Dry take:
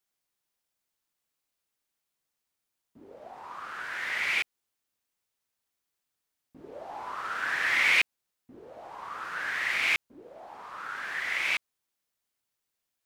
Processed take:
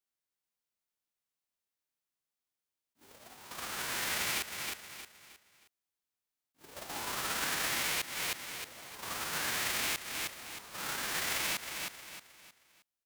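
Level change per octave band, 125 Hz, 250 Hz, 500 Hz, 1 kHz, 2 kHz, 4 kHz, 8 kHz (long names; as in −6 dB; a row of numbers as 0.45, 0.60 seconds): can't be measured, +3.5 dB, −0.5 dB, −3.5 dB, −9.0 dB, 0.0 dB, +10.5 dB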